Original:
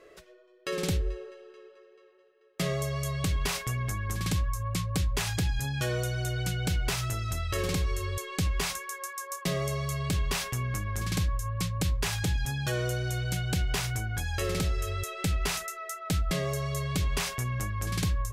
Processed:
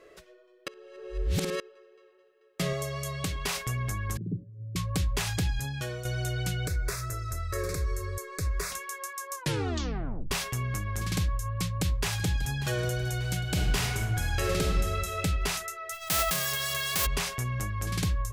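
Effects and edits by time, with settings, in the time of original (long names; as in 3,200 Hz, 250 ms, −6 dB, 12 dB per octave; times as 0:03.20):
0:00.68–0:01.60: reverse
0:02.73–0:03.57: low-shelf EQ 140 Hz −8 dB
0:04.17–0:04.76: elliptic band-pass filter 120–410 Hz, stop band 50 dB
0:05.48–0:06.05: fade out, to −9 dB
0:06.67–0:08.72: phaser with its sweep stopped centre 820 Hz, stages 6
0:09.34: tape stop 0.97 s
0:11.47–0:12.53: delay throw 590 ms, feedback 55%, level −15 dB
0:13.42–0:15.18: thrown reverb, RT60 1.2 s, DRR 1 dB
0:15.91–0:17.05: spectral envelope flattened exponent 0.1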